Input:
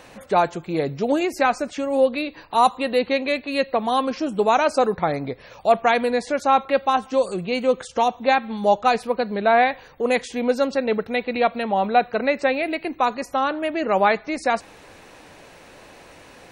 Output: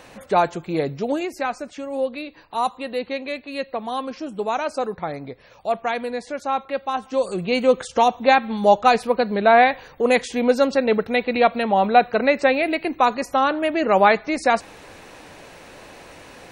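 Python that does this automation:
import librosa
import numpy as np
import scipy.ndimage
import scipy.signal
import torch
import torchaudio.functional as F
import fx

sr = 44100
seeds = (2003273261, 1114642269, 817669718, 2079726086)

y = fx.gain(x, sr, db=fx.line((0.8, 0.5), (1.42, -6.0), (6.87, -6.0), (7.51, 3.0)))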